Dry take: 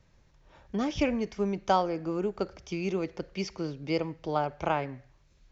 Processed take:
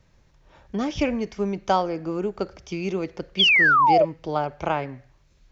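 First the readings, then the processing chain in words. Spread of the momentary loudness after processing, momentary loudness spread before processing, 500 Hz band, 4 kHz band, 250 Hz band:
16 LU, 9 LU, +5.5 dB, +17.5 dB, +3.5 dB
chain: sound drawn into the spectrogram fall, 0:03.39–0:04.05, 560–3,500 Hz −20 dBFS
level +3.5 dB

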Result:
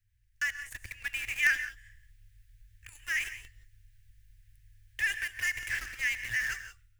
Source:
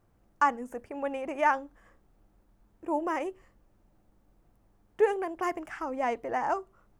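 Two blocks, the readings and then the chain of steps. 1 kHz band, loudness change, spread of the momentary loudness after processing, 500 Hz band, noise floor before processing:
−24.0 dB, −1.0 dB, 15 LU, below −30 dB, −67 dBFS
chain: Chebyshev band-stop filter 110–1,700 Hz, order 5
automatic gain control gain up to 12.5 dB
in parallel at −9.5 dB: log-companded quantiser 2 bits
on the sum: reverb whose tail is shaped and stops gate 200 ms rising, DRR 10.5 dB
level −4 dB

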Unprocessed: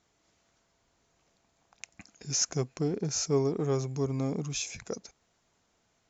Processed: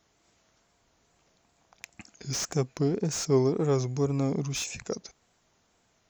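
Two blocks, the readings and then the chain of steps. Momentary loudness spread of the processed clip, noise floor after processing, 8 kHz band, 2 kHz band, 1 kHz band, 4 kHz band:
14 LU, −70 dBFS, can't be measured, +3.0 dB, +3.5 dB, −0.5 dB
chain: tape wow and flutter 81 cents
slew-rate limiting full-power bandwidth 120 Hz
level +3.5 dB

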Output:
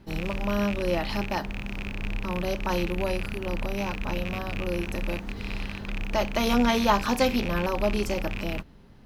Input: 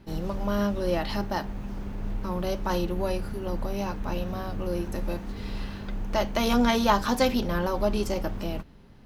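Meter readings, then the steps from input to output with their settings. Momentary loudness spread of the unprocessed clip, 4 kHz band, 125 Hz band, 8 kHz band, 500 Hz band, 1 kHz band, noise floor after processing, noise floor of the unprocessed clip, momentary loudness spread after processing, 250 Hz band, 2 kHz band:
13 LU, +1.0 dB, 0.0 dB, +0.5 dB, 0.0 dB, 0.0 dB, −49 dBFS, −49 dBFS, 11 LU, 0.0 dB, +4.0 dB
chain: loose part that buzzes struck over −33 dBFS, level −22 dBFS

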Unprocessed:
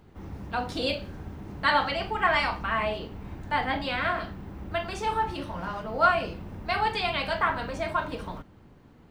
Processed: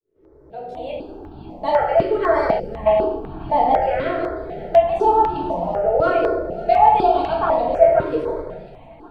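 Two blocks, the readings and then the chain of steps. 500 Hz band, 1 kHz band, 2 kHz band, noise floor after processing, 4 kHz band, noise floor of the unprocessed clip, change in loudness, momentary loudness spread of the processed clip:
+15.0 dB, +10.0 dB, −4.0 dB, −47 dBFS, can't be measured, −54 dBFS, +9.5 dB, 17 LU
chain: fade in at the beginning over 2.34 s
in parallel at −12 dB: soft clipping −20 dBFS, distortion −13 dB
on the sum: high-shelf EQ 2,800 Hz −11.5 dB
rectangular room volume 460 cubic metres, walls mixed, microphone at 1.5 metres
gain on a spectral selection 0:02.60–0:02.86, 560–4,400 Hz −21 dB
flat-topped bell 510 Hz +15 dB
on a send: delay with a high-pass on its return 542 ms, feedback 51%, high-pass 1,400 Hz, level −15 dB
on the sum: step-sequenced phaser 4 Hz 210–2,000 Hz
level −1 dB

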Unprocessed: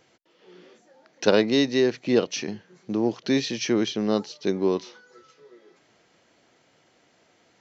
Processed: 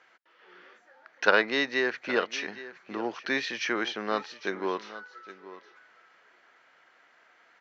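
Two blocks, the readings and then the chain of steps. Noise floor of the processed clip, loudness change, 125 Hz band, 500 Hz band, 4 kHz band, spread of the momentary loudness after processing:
−62 dBFS, −4.5 dB, −16.5 dB, −7.0 dB, −4.0 dB, 21 LU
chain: resonant band-pass 1,500 Hz, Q 2.1
on a send: single-tap delay 816 ms −16 dB
on the sum: level +9 dB

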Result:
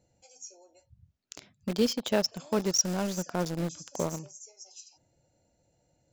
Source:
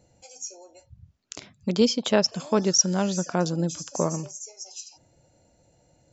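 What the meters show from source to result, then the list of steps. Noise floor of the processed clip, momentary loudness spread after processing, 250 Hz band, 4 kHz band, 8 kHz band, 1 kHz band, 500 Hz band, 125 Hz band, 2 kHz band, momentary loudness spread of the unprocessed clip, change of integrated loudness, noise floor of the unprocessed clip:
−72 dBFS, 21 LU, −6.0 dB, −6.0 dB, can't be measured, −6.0 dB, −5.5 dB, −6.5 dB, −5.0 dB, 18 LU, −6.0 dB, −63 dBFS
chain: parametric band 1,100 Hz −3 dB 0.29 octaves
in parallel at −6.5 dB: bit reduction 4 bits
on the sum: level −9 dB

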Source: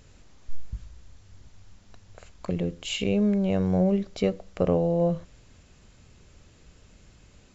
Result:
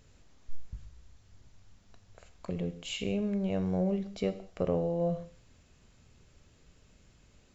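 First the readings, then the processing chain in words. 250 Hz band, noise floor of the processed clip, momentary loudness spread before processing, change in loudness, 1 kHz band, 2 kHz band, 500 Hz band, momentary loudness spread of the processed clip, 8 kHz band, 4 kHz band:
−7.5 dB, −63 dBFS, 18 LU, −7.0 dB, −6.5 dB, −6.5 dB, −6.5 dB, 20 LU, can't be measured, −6.5 dB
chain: reverb whose tail is shaped and stops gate 230 ms falling, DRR 10.5 dB
level −7 dB

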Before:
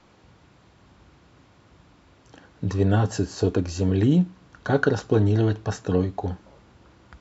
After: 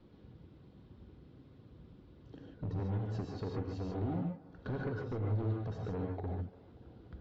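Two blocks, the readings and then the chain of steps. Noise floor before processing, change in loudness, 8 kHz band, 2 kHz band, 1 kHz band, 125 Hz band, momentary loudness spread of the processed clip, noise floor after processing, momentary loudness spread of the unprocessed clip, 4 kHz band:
−57 dBFS, −15.0 dB, can't be measured, −19.5 dB, −14.0 dB, −13.0 dB, 22 LU, −59 dBFS, 12 LU, −19.5 dB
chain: reverb reduction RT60 0.76 s
flat-topped bell 1,300 Hz −12.5 dB 2.4 octaves
downward compressor 4 to 1, threshold −32 dBFS, peak gain reduction 14 dB
hard clipping −34.5 dBFS, distortion −8 dB
high-frequency loss of the air 400 metres
tape delay 291 ms, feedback 74%, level −18 dB, low-pass 2,600 Hz
reverb whose tail is shaped and stops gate 170 ms rising, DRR −0.5 dB

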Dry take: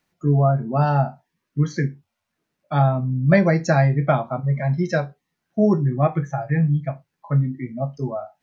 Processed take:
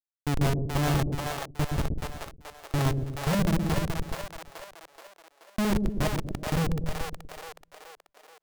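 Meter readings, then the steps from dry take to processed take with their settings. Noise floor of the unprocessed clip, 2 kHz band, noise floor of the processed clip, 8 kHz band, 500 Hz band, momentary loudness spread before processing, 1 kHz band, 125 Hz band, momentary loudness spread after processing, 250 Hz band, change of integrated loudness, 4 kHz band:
−79 dBFS, −7.0 dB, −77 dBFS, can't be measured, −11.5 dB, 11 LU, −9.5 dB, −10.0 dB, 17 LU, −8.0 dB, −8.0 dB, +6.5 dB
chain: fade-out on the ending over 1.45 s
gain on a spectral selection 0:03.35–0:05.49, 390–4,900 Hz −28 dB
mains-hum notches 60/120/180/240/300/360 Hz
noise reduction from a noise print of the clip's start 6 dB
comparator with hysteresis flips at −18 dBFS
echo with a time of its own for lows and highs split 480 Hz, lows 120 ms, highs 428 ms, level −3 dB

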